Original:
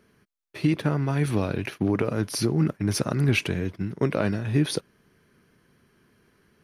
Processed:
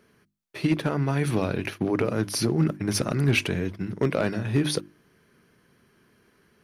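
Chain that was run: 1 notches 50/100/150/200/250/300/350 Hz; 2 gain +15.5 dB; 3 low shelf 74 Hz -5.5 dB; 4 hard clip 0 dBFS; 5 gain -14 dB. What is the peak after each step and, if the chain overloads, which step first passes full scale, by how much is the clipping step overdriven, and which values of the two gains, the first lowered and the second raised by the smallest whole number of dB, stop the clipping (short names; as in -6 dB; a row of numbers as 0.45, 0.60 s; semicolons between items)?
-9.0, +6.5, +6.5, 0.0, -14.0 dBFS; step 2, 6.5 dB; step 2 +8.5 dB, step 5 -7 dB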